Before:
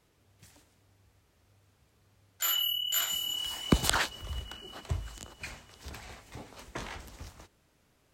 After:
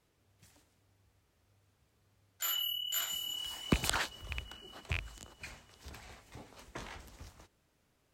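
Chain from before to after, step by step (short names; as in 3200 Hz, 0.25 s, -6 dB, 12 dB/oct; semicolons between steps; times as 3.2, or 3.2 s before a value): rattling part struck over -31 dBFS, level -16 dBFS; gain -5.5 dB; AAC 192 kbps 44100 Hz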